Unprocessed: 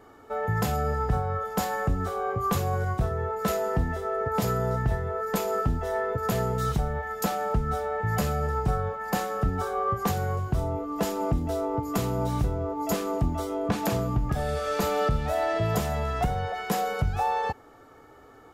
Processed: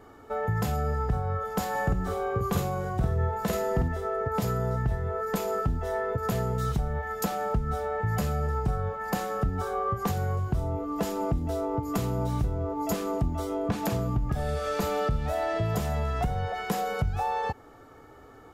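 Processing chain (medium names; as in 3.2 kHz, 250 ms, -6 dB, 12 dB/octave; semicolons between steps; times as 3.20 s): bass shelf 200 Hz +5 dB; compression 2:1, threshold -27 dBFS, peak gain reduction 6.5 dB; 1.70–3.88 s: doubling 49 ms -2.5 dB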